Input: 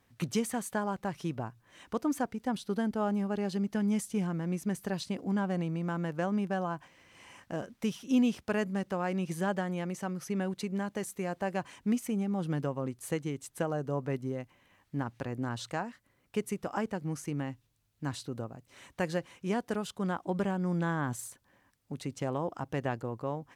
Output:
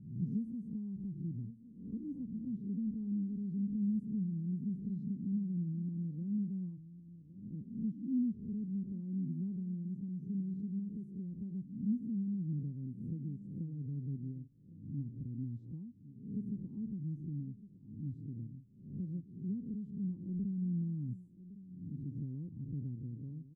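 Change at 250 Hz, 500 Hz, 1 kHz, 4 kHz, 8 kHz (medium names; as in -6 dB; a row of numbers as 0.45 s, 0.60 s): -4.0 dB, -25.0 dB, under -40 dB, under -35 dB, under -35 dB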